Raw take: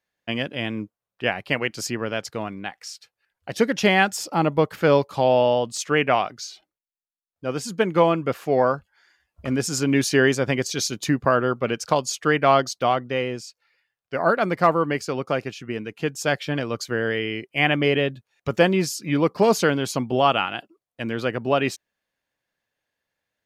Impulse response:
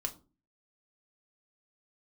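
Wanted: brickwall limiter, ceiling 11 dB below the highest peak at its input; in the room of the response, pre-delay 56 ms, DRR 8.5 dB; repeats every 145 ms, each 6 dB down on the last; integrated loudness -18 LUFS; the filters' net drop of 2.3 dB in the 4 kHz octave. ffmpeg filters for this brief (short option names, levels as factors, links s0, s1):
-filter_complex "[0:a]equalizer=f=4000:t=o:g=-3.5,alimiter=limit=0.168:level=0:latency=1,aecho=1:1:145|290|435|580|725|870:0.501|0.251|0.125|0.0626|0.0313|0.0157,asplit=2[s0][s1];[1:a]atrim=start_sample=2205,adelay=56[s2];[s1][s2]afir=irnorm=-1:irlink=0,volume=0.355[s3];[s0][s3]amix=inputs=2:normalize=0,volume=2.51"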